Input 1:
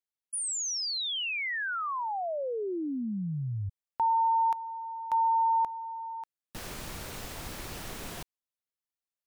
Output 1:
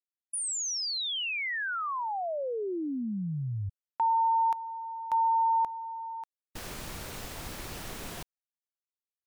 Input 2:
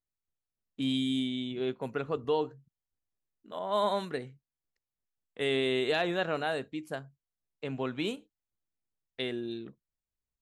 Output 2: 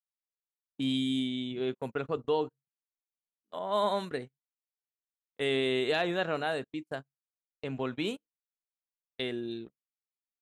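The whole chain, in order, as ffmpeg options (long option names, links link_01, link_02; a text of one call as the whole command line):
ffmpeg -i in.wav -af "agate=range=-33dB:threshold=-45dB:ratio=16:release=58:detection=peak" out.wav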